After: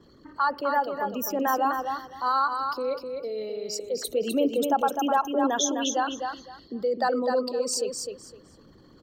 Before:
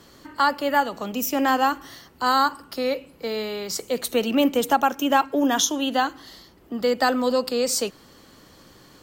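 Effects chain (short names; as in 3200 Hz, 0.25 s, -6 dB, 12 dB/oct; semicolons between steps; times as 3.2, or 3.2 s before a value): formant sharpening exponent 2; feedback echo 0.255 s, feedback 21%, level -5.5 dB; gain -4.5 dB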